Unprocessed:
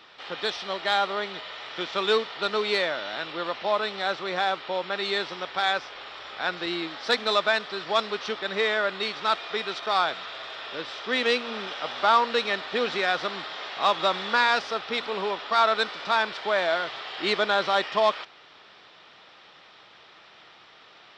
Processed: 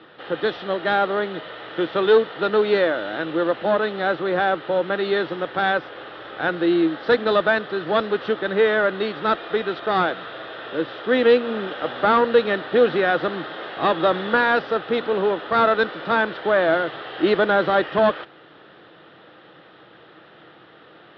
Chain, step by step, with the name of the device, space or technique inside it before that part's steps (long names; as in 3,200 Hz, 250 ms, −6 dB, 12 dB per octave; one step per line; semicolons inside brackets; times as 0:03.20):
guitar amplifier (tube saturation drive 16 dB, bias 0.55; bass and treble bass +7 dB, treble −14 dB; loudspeaker in its box 90–4,100 Hz, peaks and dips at 150 Hz +4 dB, 320 Hz +10 dB, 500 Hz +7 dB, 1,000 Hz −5 dB, 1,600 Hz +3 dB, 2,300 Hz −9 dB)
level +7 dB